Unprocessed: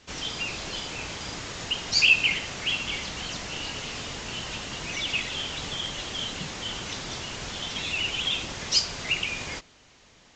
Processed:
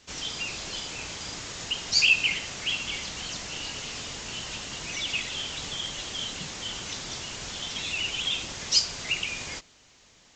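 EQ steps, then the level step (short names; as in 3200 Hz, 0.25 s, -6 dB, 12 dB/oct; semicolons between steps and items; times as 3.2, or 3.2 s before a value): high shelf 4900 Hz +9.5 dB; -4.0 dB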